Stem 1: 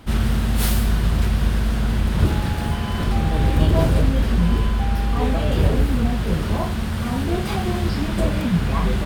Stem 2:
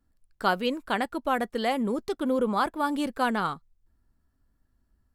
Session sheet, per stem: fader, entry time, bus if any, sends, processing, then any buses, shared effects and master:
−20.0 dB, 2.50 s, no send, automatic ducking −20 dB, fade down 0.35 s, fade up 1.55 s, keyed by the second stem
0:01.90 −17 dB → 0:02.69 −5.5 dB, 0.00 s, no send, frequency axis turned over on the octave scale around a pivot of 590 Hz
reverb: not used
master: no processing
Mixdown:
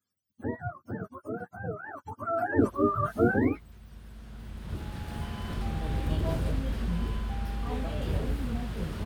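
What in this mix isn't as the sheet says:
stem 1 −20.0 dB → −12.5 dB
stem 2 −17.0 dB → −8.5 dB

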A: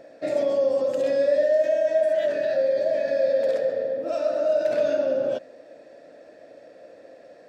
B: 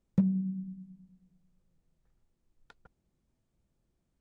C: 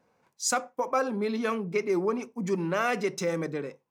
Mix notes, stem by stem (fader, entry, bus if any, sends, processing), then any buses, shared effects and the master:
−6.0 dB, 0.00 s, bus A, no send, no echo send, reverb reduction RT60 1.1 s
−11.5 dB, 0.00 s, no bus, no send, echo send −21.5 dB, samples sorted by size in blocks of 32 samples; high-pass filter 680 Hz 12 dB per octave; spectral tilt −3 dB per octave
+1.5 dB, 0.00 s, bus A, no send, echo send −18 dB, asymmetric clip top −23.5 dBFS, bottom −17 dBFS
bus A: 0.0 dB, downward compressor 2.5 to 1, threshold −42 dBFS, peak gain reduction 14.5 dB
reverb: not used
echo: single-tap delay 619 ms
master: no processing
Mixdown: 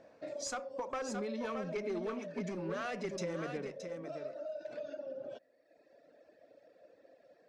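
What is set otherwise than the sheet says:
stem A −6.0 dB → −12.0 dB
stem B: muted
master: extra low-pass filter 6,800 Hz 12 dB per octave

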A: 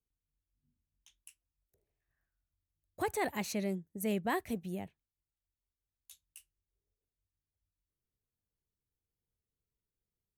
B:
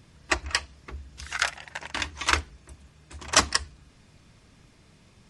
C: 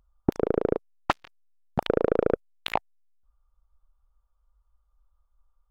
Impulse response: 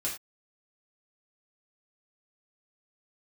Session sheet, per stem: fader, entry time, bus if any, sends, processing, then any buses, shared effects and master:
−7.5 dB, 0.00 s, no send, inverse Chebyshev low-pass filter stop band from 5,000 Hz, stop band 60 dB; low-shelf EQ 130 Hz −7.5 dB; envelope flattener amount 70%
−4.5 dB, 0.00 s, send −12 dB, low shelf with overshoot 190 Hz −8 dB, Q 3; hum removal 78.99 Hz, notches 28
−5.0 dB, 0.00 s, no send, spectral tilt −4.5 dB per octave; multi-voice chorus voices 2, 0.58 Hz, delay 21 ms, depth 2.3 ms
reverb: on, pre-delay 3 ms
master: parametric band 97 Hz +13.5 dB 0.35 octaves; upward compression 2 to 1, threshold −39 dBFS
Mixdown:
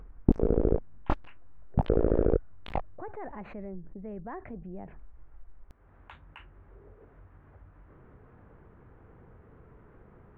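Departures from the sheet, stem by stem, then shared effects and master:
stem B: muted
reverb: off
master: missing parametric band 97 Hz +13.5 dB 0.35 octaves

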